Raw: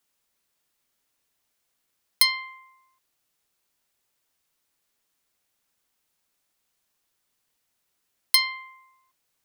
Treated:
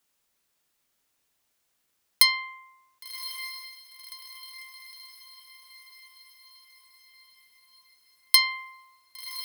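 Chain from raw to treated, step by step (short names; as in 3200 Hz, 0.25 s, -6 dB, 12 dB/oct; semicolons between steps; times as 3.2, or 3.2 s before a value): diffused feedback echo 1.097 s, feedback 55%, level -12.5 dB; gain +1 dB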